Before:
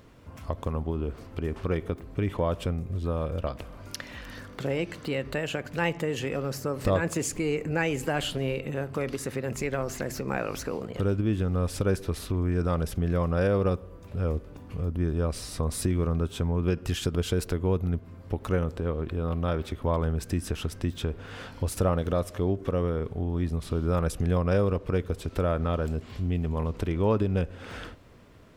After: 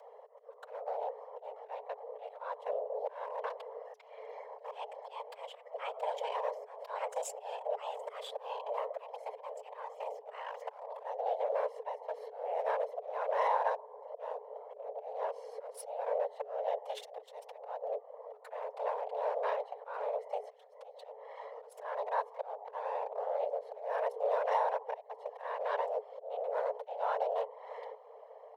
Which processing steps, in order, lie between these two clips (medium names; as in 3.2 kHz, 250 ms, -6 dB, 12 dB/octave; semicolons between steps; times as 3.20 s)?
local Wiener filter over 41 samples; time-frequency box 9.94–10.19 s, 490–1900 Hz -9 dB; comb 5.8 ms, depth 56%; harmonic-percussive split percussive -6 dB; slow attack 389 ms; compression 1.5:1, threshold -51 dBFS, peak gain reduction 11 dB; whisper effect; frequency shift +420 Hz; trim +4 dB